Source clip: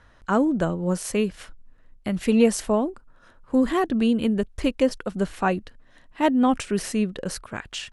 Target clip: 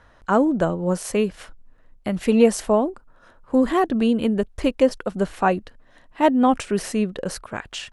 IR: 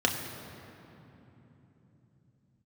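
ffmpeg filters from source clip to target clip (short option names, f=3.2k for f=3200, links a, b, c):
-af "equalizer=f=690:t=o:w=1.9:g=5"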